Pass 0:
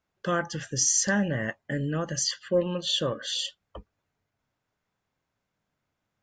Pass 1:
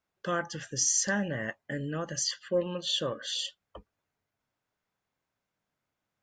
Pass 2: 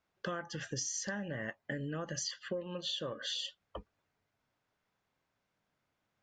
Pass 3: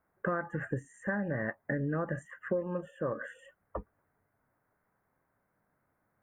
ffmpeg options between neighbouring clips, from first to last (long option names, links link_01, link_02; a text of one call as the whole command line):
ffmpeg -i in.wav -af "lowshelf=frequency=200:gain=-5.5,volume=-3dB" out.wav
ffmpeg -i in.wav -af "lowpass=5800,acompressor=threshold=-38dB:ratio=12,volume=3dB" out.wav
ffmpeg -i in.wav -af "asuperstop=centerf=4500:order=8:qfactor=0.58,volume=6.5dB" out.wav